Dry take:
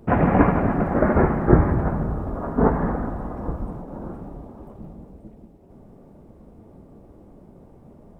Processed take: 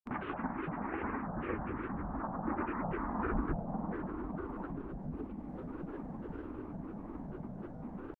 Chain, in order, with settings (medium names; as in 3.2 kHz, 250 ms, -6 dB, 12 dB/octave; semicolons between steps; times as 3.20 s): Doppler pass-by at 3.48 s, 17 m/s, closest 2 m; in parallel at +1 dB: upward compressor, threshold -46 dBFS; on the sum: graphic EQ 125/250/500/1000/2000 Hz -9/+11/-9/+12/+11 dB; compression 4:1, threshold -51 dBFS, peak gain reduction 28.5 dB; granulator, pitch spread up and down by 7 st; treble shelf 2.5 kHz -12 dB; trim +14.5 dB